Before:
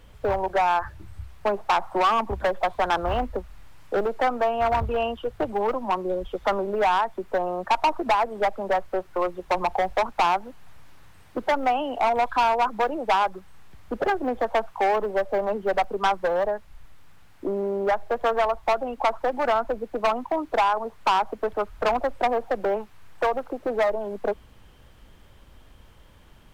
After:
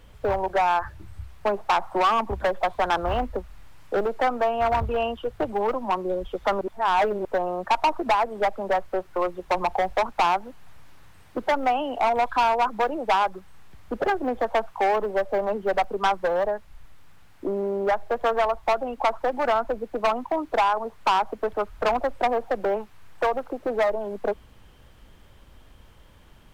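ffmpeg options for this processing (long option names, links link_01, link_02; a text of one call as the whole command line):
ffmpeg -i in.wav -filter_complex "[0:a]asplit=3[link_01][link_02][link_03];[link_01]atrim=end=6.612[link_04];[link_02]atrim=start=6.608:end=7.252,asetpts=PTS-STARTPTS,areverse[link_05];[link_03]atrim=start=7.248[link_06];[link_04][link_05]acrossfade=duration=0.004:curve1=hsin:curve2=hsin[link_07];[link_07][link_06]acrossfade=duration=0.004:curve1=hsin:curve2=hsin" out.wav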